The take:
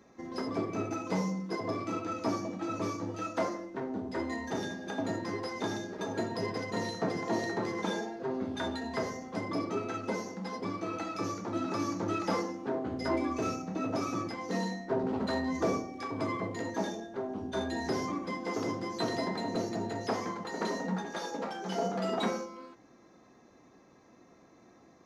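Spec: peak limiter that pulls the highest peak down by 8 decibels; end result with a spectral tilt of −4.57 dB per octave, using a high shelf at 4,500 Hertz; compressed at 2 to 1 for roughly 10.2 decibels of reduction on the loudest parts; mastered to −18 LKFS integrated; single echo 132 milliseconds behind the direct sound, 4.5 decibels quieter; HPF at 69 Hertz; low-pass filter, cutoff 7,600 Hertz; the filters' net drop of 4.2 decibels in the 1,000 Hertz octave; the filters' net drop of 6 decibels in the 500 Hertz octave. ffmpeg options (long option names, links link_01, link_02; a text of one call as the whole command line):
ffmpeg -i in.wav -af "highpass=69,lowpass=7600,equalizer=frequency=500:width_type=o:gain=-7.5,equalizer=frequency=1000:width_type=o:gain=-3.5,highshelf=frequency=4500:gain=5.5,acompressor=threshold=-49dB:ratio=2,alimiter=level_in=15dB:limit=-24dB:level=0:latency=1,volume=-15dB,aecho=1:1:132:0.596,volume=28.5dB" out.wav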